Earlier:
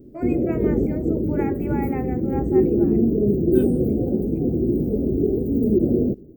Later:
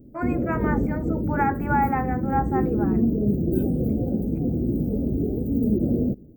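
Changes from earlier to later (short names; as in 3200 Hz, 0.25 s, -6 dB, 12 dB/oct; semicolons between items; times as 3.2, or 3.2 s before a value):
first voice: add band shelf 1200 Hz +14 dB 1.3 oct; second voice -9.5 dB; background: add bell 380 Hz -10 dB 0.54 oct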